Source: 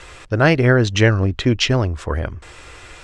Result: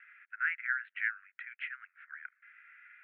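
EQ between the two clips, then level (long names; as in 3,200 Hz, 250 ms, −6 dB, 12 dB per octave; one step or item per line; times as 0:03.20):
Butterworth high-pass 1,400 Hz 96 dB per octave
elliptic low-pass filter 2,200 Hz, stop band 70 dB
high-frequency loss of the air 330 metres
−7.0 dB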